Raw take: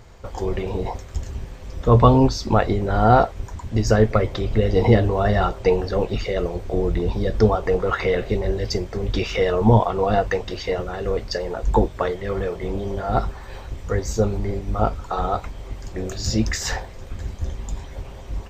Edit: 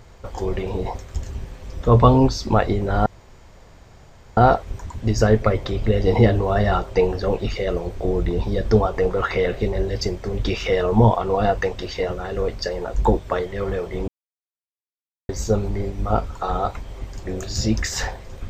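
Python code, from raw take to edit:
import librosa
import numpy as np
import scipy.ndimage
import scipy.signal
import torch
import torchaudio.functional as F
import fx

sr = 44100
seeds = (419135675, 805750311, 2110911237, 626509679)

y = fx.edit(x, sr, fx.insert_room_tone(at_s=3.06, length_s=1.31),
    fx.silence(start_s=12.77, length_s=1.21), tone=tone)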